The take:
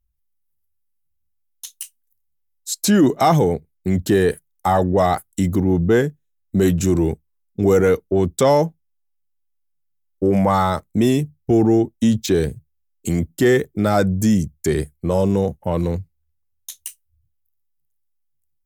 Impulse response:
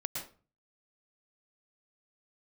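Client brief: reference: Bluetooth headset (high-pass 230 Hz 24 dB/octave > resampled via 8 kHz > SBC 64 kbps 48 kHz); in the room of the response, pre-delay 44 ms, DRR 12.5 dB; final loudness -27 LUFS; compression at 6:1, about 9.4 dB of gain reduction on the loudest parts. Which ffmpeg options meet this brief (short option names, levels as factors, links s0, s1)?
-filter_complex "[0:a]acompressor=threshold=0.0891:ratio=6,asplit=2[s0][s1];[1:a]atrim=start_sample=2205,adelay=44[s2];[s1][s2]afir=irnorm=-1:irlink=0,volume=0.188[s3];[s0][s3]amix=inputs=2:normalize=0,highpass=f=230:w=0.5412,highpass=f=230:w=1.3066,aresample=8000,aresample=44100,volume=1.19" -ar 48000 -c:a sbc -b:a 64k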